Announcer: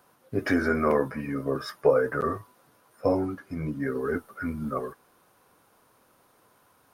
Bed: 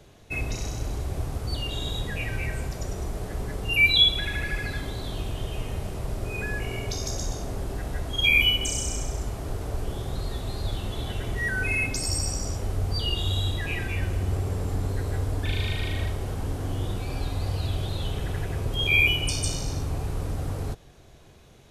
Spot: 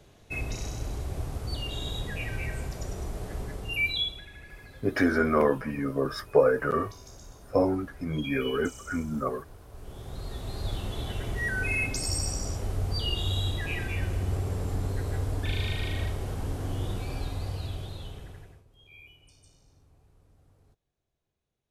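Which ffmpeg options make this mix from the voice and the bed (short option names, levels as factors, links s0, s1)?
-filter_complex "[0:a]adelay=4500,volume=1.06[s0];[1:a]volume=3.98,afade=t=out:st=3.36:d=0.9:silence=0.188365,afade=t=in:st=9.7:d=1.02:silence=0.16788,afade=t=out:st=17:d=1.64:silence=0.0334965[s1];[s0][s1]amix=inputs=2:normalize=0"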